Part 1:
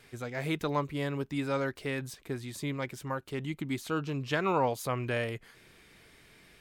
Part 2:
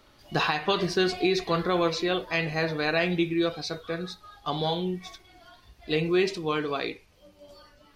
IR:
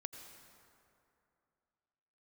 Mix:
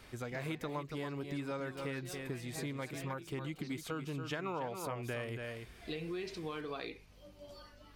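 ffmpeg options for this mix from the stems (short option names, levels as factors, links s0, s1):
-filter_complex "[0:a]bandreject=f=4100:w=16,volume=0.841,asplit=3[s0][s1][s2];[s1]volume=0.355[s3];[1:a]acompressor=threshold=0.0141:ratio=2.5,aeval=exprs='val(0)+0.00112*(sin(2*PI*50*n/s)+sin(2*PI*2*50*n/s)/2+sin(2*PI*3*50*n/s)/3+sin(2*PI*4*50*n/s)/4+sin(2*PI*5*50*n/s)/5)':c=same,volume=0.75[s4];[s2]apad=whole_len=350858[s5];[s4][s5]sidechaincompress=threshold=0.00708:ratio=8:attack=6.8:release=583[s6];[s3]aecho=0:1:280:1[s7];[s0][s6][s7]amix=inputs=3:normalize=0,acompressor=threshold=0.0141:ratio=4"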